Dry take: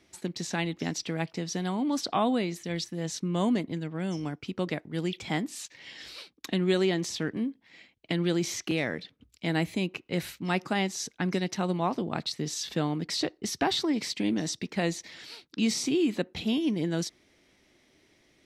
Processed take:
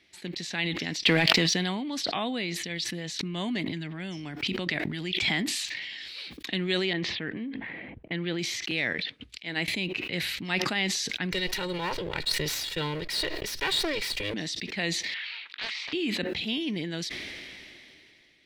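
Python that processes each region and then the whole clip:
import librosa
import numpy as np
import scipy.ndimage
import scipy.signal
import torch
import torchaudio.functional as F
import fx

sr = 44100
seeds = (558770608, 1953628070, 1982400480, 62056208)

y = fx.chain(x, sr, fx.peak_eq(hz=95.0, db=-8.0, octaves=1.3),
    fx.leveller(passes=2),
    fx.env_flatten(amount_pct=100), at=(1.04, 1.54))
y = fx.chain(y, sr, fx.notch(hz=490.0, q=6.2),
    fx.pre_swell(db_per_s=32.0), at=(3.19, 6.06))
y = fx.chain(y, sr, fx.env_lowpass(base_hz=520.0, full_db=-24.5),
    fx.lowpass(hz=2800.0, slope=12), at=(6.93, 8.39))
y = fx.chain(y, sr, fx.lowpass(hz=9400.0, slope=12),
    fx.bass_treble(bass_db=-5, treble_db=-1),
    fx.upward_expand(threshold_db=-40.0, expansion=2.5), at=(8.93, 9.68))
y = fx.chain(y, sr, fx.lower_of_two(delay_ms=2.1),
    fx.high_shelf(hz=8400.0, db=7.5), at=(11.32, 14.34))
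y = fx.chain(y, sr, fx.cheby1_bandpass(low_hz=1000.0, high_hz=2800.0, order=2),
    fx.doppler_dist(depth_ms=0.72), at=(15.14, 15.93))
y = fx.band_shelf(y, sr, hz=2800.0, db=10.5, octaves=1.7)
y = fx.sustainer(y, sr, db_per_s=22.0)
y = y * 10.0 ** (-6.0 / 20.0)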